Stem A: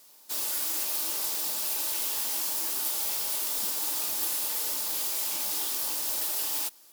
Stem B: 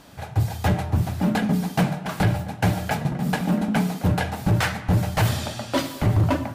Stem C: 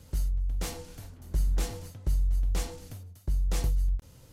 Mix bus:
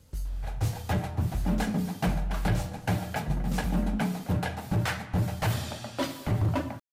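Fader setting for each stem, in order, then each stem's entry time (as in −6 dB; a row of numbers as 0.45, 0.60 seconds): muted, −7.0 dB, −5.0 dB; muted, 0.25 s, 0.00 s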